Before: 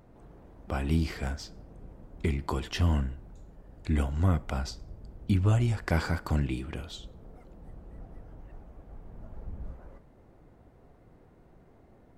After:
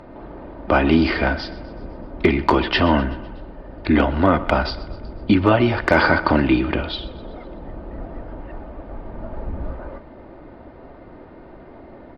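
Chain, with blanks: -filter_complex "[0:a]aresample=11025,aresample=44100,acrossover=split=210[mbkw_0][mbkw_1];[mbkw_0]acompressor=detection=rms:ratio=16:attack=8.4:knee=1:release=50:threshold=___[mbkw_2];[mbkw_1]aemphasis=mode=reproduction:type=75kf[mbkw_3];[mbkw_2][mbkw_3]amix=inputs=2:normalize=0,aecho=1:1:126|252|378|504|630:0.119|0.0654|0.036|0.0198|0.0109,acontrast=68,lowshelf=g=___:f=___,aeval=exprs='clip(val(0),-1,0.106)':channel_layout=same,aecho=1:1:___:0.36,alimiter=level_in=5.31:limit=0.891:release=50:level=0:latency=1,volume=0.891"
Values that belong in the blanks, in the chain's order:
0.02, -11, 200, 3.3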